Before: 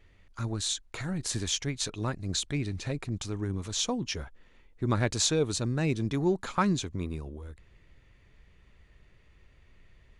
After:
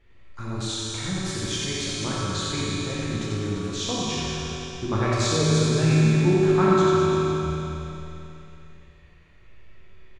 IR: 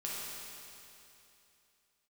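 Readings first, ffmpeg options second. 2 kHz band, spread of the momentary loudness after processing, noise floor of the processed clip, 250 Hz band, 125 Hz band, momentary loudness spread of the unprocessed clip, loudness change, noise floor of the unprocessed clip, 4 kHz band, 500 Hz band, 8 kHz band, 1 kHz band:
+7.0 dB, 13 LU, -50 dBFS, +7.5 dB, +8.5 dB, 11 LU, +7.0 dB, -60 dBFS, +5.0 dB, +10.0 dB, +2.0 dB, +8.5 dB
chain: -filter_complex "[0:a]highshelf=f=6.8k:g=-11,aecho=1:1:90|202.5|343.1|518.9|738.6:0.631|0.398|0.251|0.158|0.1[a];[1:a]atrim=start_sample=2205,asetrate=41454,aresample=44100[b];[a][b]afir=irnorm=-1:irlink=0,volume=2.5dB"

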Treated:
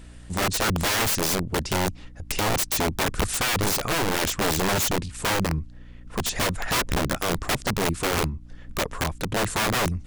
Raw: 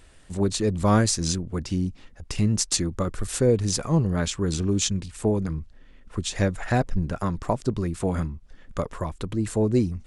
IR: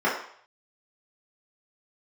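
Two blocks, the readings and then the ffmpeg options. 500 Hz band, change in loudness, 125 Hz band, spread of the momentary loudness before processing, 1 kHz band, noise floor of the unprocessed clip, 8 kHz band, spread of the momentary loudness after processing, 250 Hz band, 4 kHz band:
-1.5 dB, +1.0 dB, -4.5 dB, 11 LU, +5.5 dB, -51 dBFS, +2.0 dB, 8 LU, -4.5 dB, +5.5 dB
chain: -af "aeval=exprs='val(0)+0.00398*(sin(2*PI*60*n/s)+sin(2*PI*2*60*n/s)/2+sin(2*PI*3*60*n/s)/3+sin(2*PI*4*60*n/s)/4+sin(2*PI*5*60*n/s)/5)':c=same,aeval=exprs='(mod(11.9*val(0)+1,2)-1)/11.9':c=same,volume=3.5dB"

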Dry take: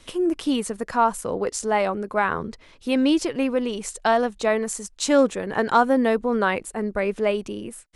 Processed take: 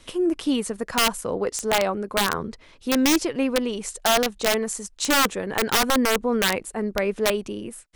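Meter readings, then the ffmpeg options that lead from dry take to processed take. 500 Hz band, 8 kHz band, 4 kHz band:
-2.0 dB, +5.5 dB, +8.5 dB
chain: -af "aeval=exprs='(mod(4.22*val(0)+1,2)-1)/4.22':c=same"

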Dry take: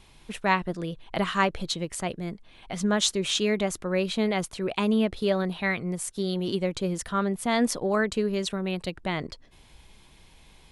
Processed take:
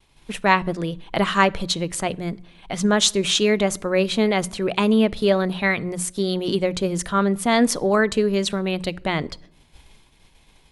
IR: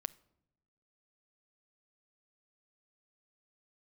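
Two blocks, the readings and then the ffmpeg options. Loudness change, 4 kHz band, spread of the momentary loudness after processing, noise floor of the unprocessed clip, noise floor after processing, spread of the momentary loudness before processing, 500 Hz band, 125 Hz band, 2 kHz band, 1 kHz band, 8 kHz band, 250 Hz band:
+6.0 dB, +6.5 dB, 9 LU, -55 dBFS, -56 dBFS, 9 LU, +6.5 dB, +5.0 dB, +6.5 dB, +6.5 dB, +6.5 dB, +5.5 dB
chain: -filter_complex "[0:a]agate=range=-33dB:threshold=-46dB:ratio=3:detection=peak,bandreject=f=60:t=h:w=6,bandreject=f=120:t=h:w=6,bandreject=f=180:t=h:w=6,asplit=2[a][b];[1:a]atrim=start_sample=2205,asetrate=42336,aresample=44100[c];[b][c]afir=irnorm=-1:irlink=0,volume=6dB[d];[a][d]amix=inputs=2:normalize=0,volume=-2dB"

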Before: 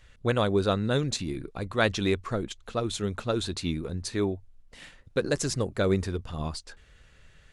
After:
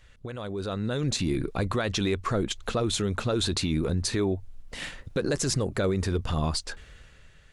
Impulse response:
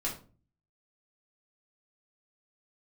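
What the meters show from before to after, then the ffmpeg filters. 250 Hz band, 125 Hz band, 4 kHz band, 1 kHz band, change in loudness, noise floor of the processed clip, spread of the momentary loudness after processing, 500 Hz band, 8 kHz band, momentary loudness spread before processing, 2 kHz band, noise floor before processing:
+1.0 dB, +2.0 dB, +3.0 dB, -0.5 dB, +0.5 dB, -54 dBFS, 11 LU, -1.5 dB, +4.0 dB, 10 LU, -1.5 dB, -57 dBFS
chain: -af "acompressor=threshold=-33dB:ratio=2.5,alimiter=level_in=4.5dB:limit=-24dB:level=0:latency=1:release=28,volume=-4.5dB,dynaudnorm=f=120:g=13:m=11dB"

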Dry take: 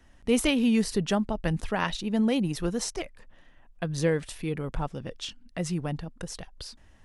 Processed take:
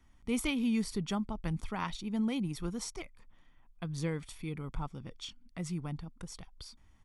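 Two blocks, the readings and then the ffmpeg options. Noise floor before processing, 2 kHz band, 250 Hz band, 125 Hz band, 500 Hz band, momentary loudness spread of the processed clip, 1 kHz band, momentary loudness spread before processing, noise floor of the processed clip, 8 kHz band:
-56 dBFS, -9.0 dB, -7.0 dB, -6.0 dB, -13.0 dB, 16 LU, -7.5 dB, 15 LU, -62 dBFS, -8.0 dB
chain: -af "aecho=1:1:0.9:0.51,volume=-9dB"

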